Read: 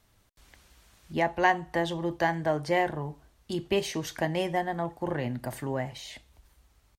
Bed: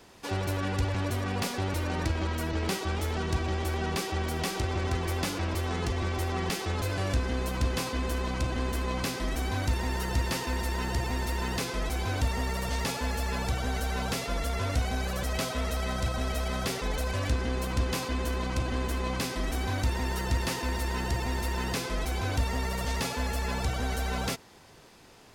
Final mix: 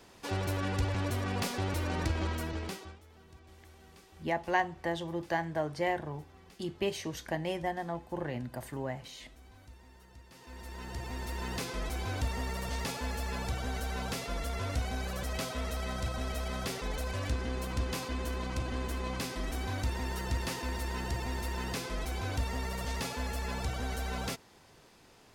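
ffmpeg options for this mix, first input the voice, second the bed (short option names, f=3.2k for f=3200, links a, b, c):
-filter_complex "[0:a]adelay=3100,volume=-5.5dB[a];[1:a]volume=19dB,afade=t=out:st=2.27:d=0.72:silence=0.0630957,afade=t=in:st=10.31:d=1.3:silence=0.0841395[b];[a][b]amix=inputs=2:normalize=0"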